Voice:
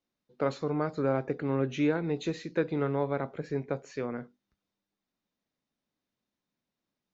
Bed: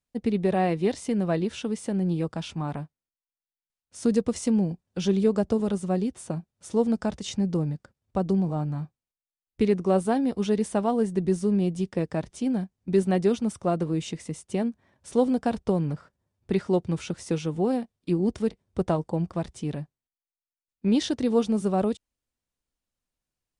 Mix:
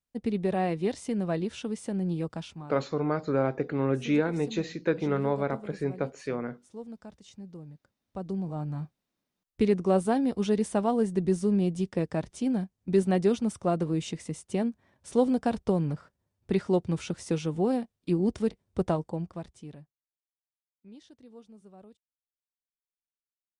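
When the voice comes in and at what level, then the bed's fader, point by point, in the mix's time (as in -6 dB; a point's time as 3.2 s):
2.30 s, +2.0 dB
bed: 2.37 s -4 dB
2.85 s -18.5 dB
7.61 s -18.5 dB
8.91 s -1.5 dB
18.86 s -1.5 dB
20.63 s -27.5 dB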